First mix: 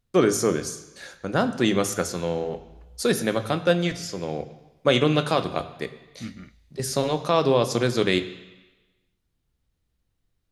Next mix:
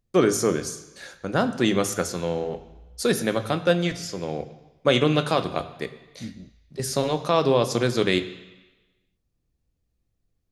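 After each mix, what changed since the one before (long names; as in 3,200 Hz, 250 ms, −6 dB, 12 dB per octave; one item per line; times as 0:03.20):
second voice: add Butterworth low-pass 690 Hz 48 dB per octave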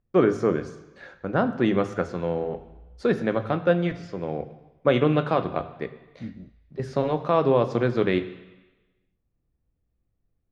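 master: add low-pass filter 1,900 Hz 12 dB per octave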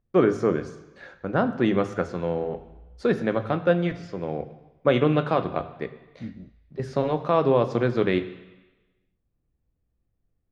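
nothing changed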